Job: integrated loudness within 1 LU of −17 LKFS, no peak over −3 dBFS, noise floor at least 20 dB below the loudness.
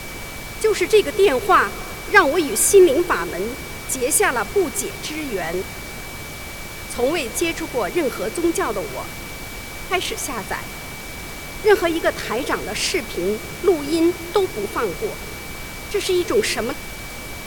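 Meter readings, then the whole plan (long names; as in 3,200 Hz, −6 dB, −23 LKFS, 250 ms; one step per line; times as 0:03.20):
interfering tone 2,300 Hz; level of the tone −37 dBFS; background noise floor −33 dBFS; target noise floor −40 dBFS; integrated loudness −20.0 LKFS; sample peak −1.5 dBFS; target loudness −17.0 LKFS
→ notch filter 2,300 Hz, Q 30
noise reduction from a noise print 7 dB
level +3 dB
brickwall limiter −3 dBFS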